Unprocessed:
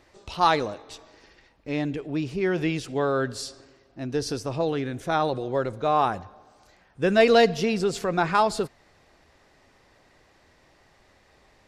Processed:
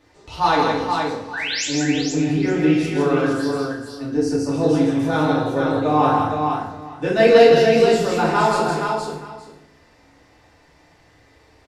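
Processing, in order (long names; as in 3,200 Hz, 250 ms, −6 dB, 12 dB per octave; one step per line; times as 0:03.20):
0:03.29–0:04.49: phaser swept by the level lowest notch 230 Hz, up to 3,600 Hz, full sweep at −27.5 dBFS
in parallel at −11 dB: hard clipping −15.5 dBFS, distortion −14 dB
0:01.33–0:01.65: on the sum: sound drawn into the spectrogram rise 1,400–7,900 Hz −25 dBFS
flanger 1.9 Hz, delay 9.7 ms, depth 6 ms, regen −56%
on a send: multi-tap delay 163/354/471/872 ms −4/−19/−4.5/−19 dB
on the sum: feedback delay network reverb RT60 0.72 s, low-frequency decay 1.25×, high-frequency decay 0.8×, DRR −5.5 dB
level −2 dB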